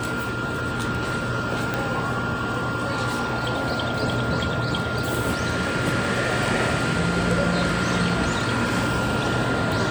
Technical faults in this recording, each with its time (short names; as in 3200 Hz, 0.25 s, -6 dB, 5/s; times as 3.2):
tone 1400 Hz -29 dBFS
1.74 pop -10 dBFS